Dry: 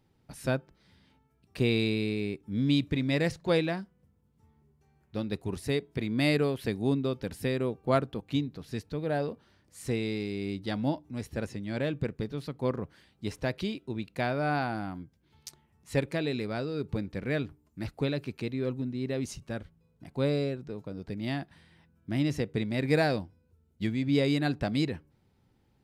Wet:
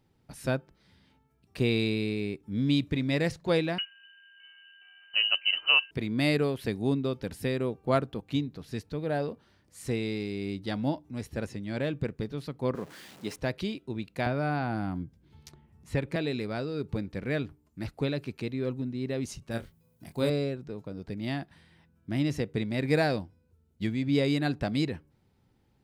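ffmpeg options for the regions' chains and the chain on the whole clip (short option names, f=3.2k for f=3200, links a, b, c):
-filter_complex "[0:a]asettb=1/sr,asplit=3[a][b][c];[a]atrim=end=3.784[d];[b]atrim=start=3.78:end=5.91,asetpts=PTS-STARTPTS,afade=t=in:d=0.004:c=qsin,afade=t=out:st=2.126:d=0.004:c=qsin,acontrast=65,aeval=exprs='val(0)+0.00178*sin(2*PI*1500*n/s)':c=same,lowpass=f=2.6k:t=q:w=0.5098,lowpass=f=2.6k:t=q:w=0.6013,lowpass=f=2.6k:t=q:w=0.9,lowpass=f=2.6k:t=q:w=2.563,afreqshift=-3100[e];[c]atrim=start=5.906[f];[d][e]acrossfade=d=0.004:c1=hsin:c2=qsin[g];[g][f]acrossfade=d=0.004:c1=qsin:c2=hsin,asettb=1/sr,asplit=3[h][i][j];[h]atrim=end=12.754[k];[i]atrim=start=12.75:end=13.36,asetpts=PTS-STARTPTS,afade=t=in:d=0.004:c=qsin,afade=t=out:st=0.606:d=0.004:c=qsin,aeval=exprs='val(0)+0.5*0.00631*sgn(val(0))':c=same,highpass=190[l];[j]atrim=start=13.356[m];[k][l]acrossfade=d=0.004:c1=hsin:c2=qsin[n];[n][m]acrossfade=d=0.004:c1=qsin:c2=hsin,asettb=1/sr,asplit=3[o][p][q];[o]atrim=end=14.264[r];[p]atrim=start=14.26:end=16.16,asetpts=PTS-STARTPTS,afade=t=in:d=0.004:c=qsin,afade=t=out:st=1.896:d=0.004:c=qsin,lowshelf=f=430:g=9.5,acrossover=split=730|3500[s][t][u];[s]acompressor=threshold=-28dB:ratio=4[v];[t]acompressor=threshold=-32dB:ratio=4[w];[u]acompressor=threshold=-54dB:ratio=4[x];[v][w][x]amix=inputs=3:normalize=0[y];[q]atrim=start=16.156[z];[r][y]acrossfade=d=0.004:c1=hsin:c2=qsin[aa];[aa][z]acrossfade=d=0.004:c1=qsin:c2=hsin,asettb=1/sr,asplit=3[ab][ac][ad];[ab]atrim=end=19.514[ae];[ac]atrim=start=19.51:end=20.3,asetpts=PTS-STARTPTS,afade=t=in:d=0.004:c=qsin,afade=t=out:st=0.786:d=0.004:c=qsin,aemphasis=mode=production:type=50fm,asplit=2[af][ag];[ag]adelay=26,volume=-5dB[ah];[af][ah]amix=inputs=2:normalize=0,atrim=end_sample=34839[ai];[ad]atrim=start=20.296[aj];[ae][ai]acrossfade=d=0.004:c1=hsin:c2=qsin[ak];[ak][aj]acrossfade=d=0.004:c1=qsin:c2=hsin"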